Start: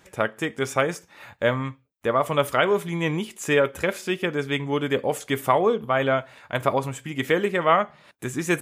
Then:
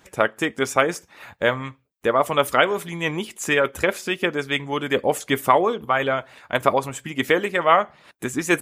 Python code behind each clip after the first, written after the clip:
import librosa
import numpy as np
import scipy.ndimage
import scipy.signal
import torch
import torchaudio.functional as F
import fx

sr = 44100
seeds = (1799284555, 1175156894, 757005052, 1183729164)

y = fx.hpss(x, sr, part='harmonic', gain_db=-9)
y = y * 10.0 ** (5.0 / 20.0)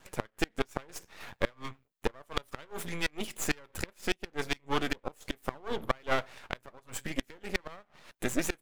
y = fx.gate_flip(x, sr, shuts_db=-10.0, range_db=-30)
y = np.maximum(y, 0.0)